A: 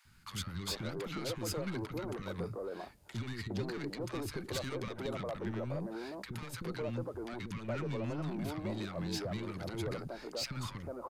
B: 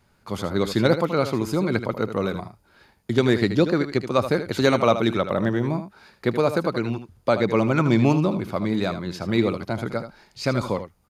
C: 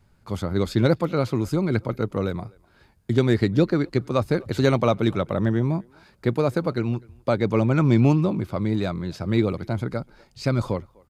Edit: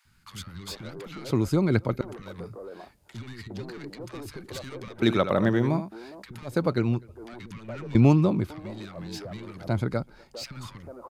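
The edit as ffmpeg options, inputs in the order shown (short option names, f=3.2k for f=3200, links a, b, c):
-filter_complex "[2:a]asplit=4[a][b][c][d];[0:a]asplit=6[e][f][g][h][i][j];[e]atrim=end=1.312[k];[a]atrim=start=1.308:end=2.012[l];[f]atrim=start=2.008:end=5.022[m];[1:a]atrim=start=5.018:end=5.922[n];[g]atrim=start=5.918:end=6.6[o];[b]atrim=start=6.44:end=7.23[p];[h]atrim=start=7.07:end=7.952[q];[c]atrim=start=7.948:end=8.502[r];[i]atrim=start=8.498:end=9.682[s];[d]atrim=start=9.678:end=10.342[t];[j]atrim=start=10.338[u];[k][l]acrossfade=d=0.004:c1=hsin:c2=hsin[v];[v][m]acrossfade=d=0.004:c1=hsin:c2=hsin[w];[w][n]acrossfade=d=0.004:c1=hsin:c2=hsin[x];[x][o]acrossfade=d=0.004:c1=hsin:c2=hsin[y];[y][p]acrossfade=d=0.16:c1=tri:c2=tri[z];[z][q]acrossfade=d=0.16:c1=tri:c2=tri[aa];[aa][r]acrossfade=d=0.004:c1=hsin:c2=hsin[ab];[ab][s]acrossfade=d=0.004:c1=hsin:c2=hsin[ac];[ac][t]acrossfade=d=0.004:c1=hsin:c2=hsin[ad];[ad][u]acrossfade=d=0.004:c1=hsin:c2=hsin"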